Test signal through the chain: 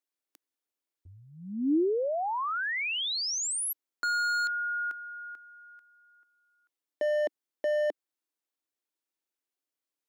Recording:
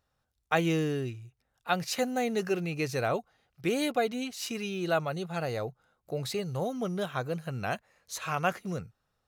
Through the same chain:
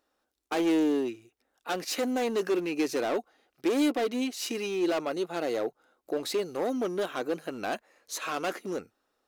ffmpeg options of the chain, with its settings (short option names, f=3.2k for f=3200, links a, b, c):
-af "volume=30dB,asoftclip=hard,volume=-30dB,lowshelf=f=200:t=q:w=3:g=-14,volume=2.5dB"